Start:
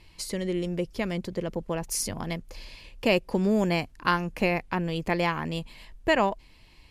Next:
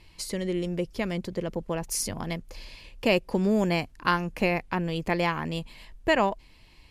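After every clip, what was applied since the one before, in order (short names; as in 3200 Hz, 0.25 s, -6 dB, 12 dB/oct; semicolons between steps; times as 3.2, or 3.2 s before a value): nothing audible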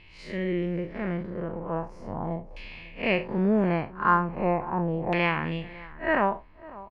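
time blur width 0.11 s; echo 0.548 s -20 dB; LFO low-pass saw down 0.39 Hz 750–2700 Hz; gain +1.5 dB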